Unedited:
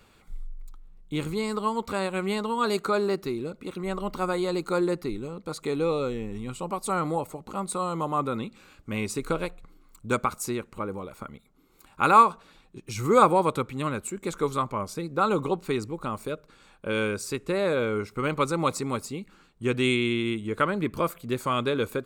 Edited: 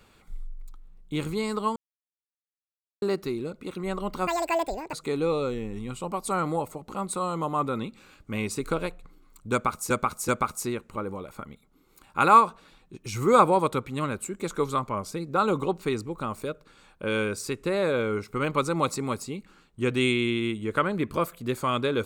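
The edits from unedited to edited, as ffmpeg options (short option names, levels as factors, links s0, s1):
-filter_complex "[0:a]asplit=7[s0][s1][s2][s3][s4][s5][s6];[s0]atrim=end=1.76,asetpts=PTS-STARTPTS,afade=t=out:st=1.756:d=0.004:c=hsin[s7];[s1]atrim=start=1.76:end=3.02,asetpts=PTS-STARTPTS,volume=0[s8];[s2]atrim=start=3.02:end=4.274,asetpts=PTS-STARTPTS,afade=t=in:d=0.004:c=hsin[s9];[s3]atrim=start=4.27:end=5.52,asetpts=PTS-STARTPTS,asetrate=83349,aresample=44100[s10];[s4]atrim=start=5.516:end=10.492[s11];[s5]atrim=start=10.108:end=10.492[s12];[s6]atrim=start=10.108[s13];[s7][s8][s9]concat=n=3:v=0:a=1[s14];[s14][s10]acrossfade=d=0.004:c1=hsin:c2=hsin[s15];[s15][s11]acrossfade=d=0.004:c1=hsin:c2=hsin[s16];[s16][s12]acrossfade=d=0.004:c1=hsin:c2=hsin[s17];[s17][s13]acrossfade=d=0.004:c1=hsin:c2=hsin"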